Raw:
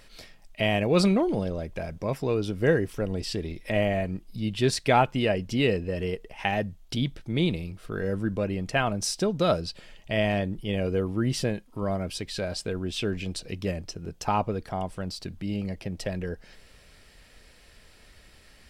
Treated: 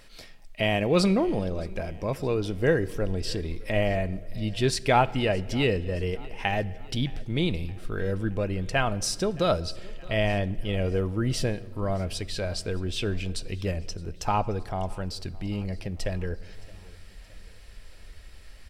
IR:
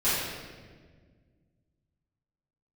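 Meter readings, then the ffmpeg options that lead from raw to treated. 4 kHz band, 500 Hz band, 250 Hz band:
0.0 dB, -0.5 dB, -1.5 dB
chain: -filter_complex "[0:a]asubboost=boost=3.5:cutoff=80,aecho=1:1:619|1238|1857|2476:0.0708|0.0375|0.0199|0.0105,asplit=2[s0][s1];[1:a]atrim=start_sample=2205,asetrate=36162,aresample=44100[s2];[s1][s2]afir=irnorm=-1:irlink=0,volume=0.0224[s3];[s0][s3]amix=inputs=2:normalize=0"

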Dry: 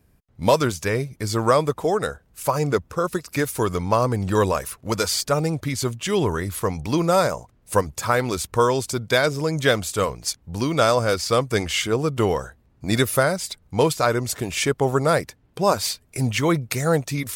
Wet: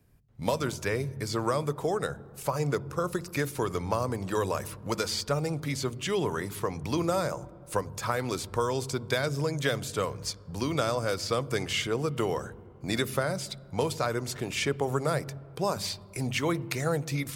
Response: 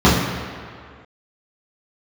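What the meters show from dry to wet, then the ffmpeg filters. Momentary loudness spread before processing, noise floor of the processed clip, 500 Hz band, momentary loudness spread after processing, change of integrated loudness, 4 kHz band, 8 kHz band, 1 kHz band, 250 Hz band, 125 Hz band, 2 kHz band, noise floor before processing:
7 LU, -49 dBFS, -8.5 dB, 6 LU, -8.0 dB, -7.0 dB, -9.0 dB, -9.0 dB, -8.0 dB, -7.0 dB, -8.0 dB, -60 dBFS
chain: -filter_complex "[0:a]acrossover=split=250|5700[s0][s1][s2];[s0]acompressor=threshold=0.0178:ratio=4[s3];[s1]acompressor=threshold=0.0891:ratio=4[s4];[s2]acompressor=threshold=0.0126:ratio=4[s5];[s3][s4][s5]amix=inputs=3:normalize=0,asplit=2[s6][s7];[1:a]atrim=start_sample=2205,asetrate=33957,aresample=44100,lowshelf=f=210:g=8.5[s8];[s7][s8]afir=irnorm=-1:irlink=0,volume=0.00447[s9];[s6][s9]amix=inputs=2:normalize=0,volume=0.596"

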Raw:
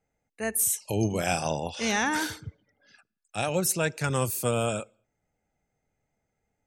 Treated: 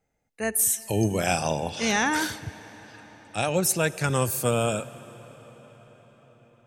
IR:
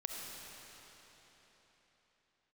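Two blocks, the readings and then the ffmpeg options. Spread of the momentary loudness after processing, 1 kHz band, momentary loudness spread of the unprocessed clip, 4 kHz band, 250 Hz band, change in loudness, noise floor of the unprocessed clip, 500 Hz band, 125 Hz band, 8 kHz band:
15 LU, +2.5 dB, 10 LU, +2.5 dB, +2.5 dB, +2.5 dB, -81 dBFS, +2.5 dB, +2.5 dB, +2.5 dB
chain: -filter_complex "[0:a]asplit=2[s0][s1];[1:a]atrim=start_sample=2205,asetrate=29547,aresample=44100[s2];[s1][s2]afir=irnorm=-1:irlink=0,volume=0.141[s3];[s0][s3]amix=inputs=2:normalize=0,volume=1.19"

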